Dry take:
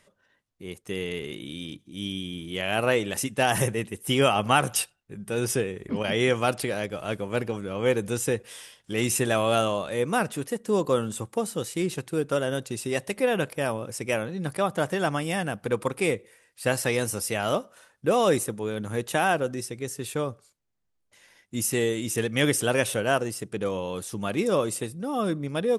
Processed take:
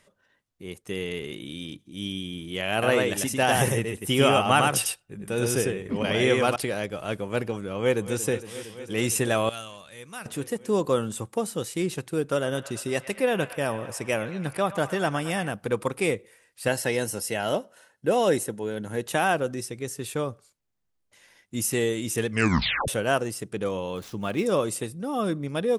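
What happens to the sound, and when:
2.72–6.56 echo 0.1 s -3 dB
7.77–8.19 echo throw 0.23 s, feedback 85%, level -13.5 dB
9.49–10.26 passive tone stack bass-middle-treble 5-5-5
12.2–15.51 band-limited delay 0.111 s, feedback 72%, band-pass 1500 Hz, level -12.5 dB
16.68–19.06 notch comb 1200 Hz
22.3 tape stop 0.58 s
23.96–24.46 median filter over 5 samples

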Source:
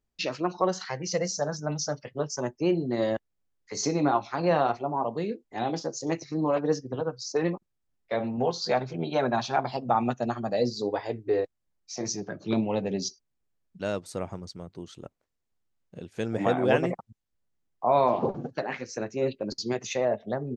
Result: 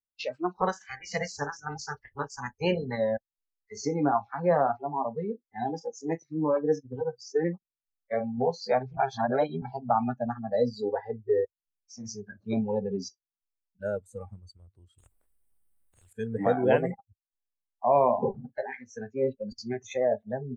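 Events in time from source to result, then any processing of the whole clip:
0.55–2.96 spectral limiter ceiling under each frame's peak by 19 dB
8.97–9.62 reverse
14.98–16.13 spectral compressor 4:1
whole clip: high shelf 4800 Hz -12 dB; spectral noise reduction 24 dB; dynamic EQ 520 Hz, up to +3 dB, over -33 dBFS, Q 1.1; gain -1.5 dB

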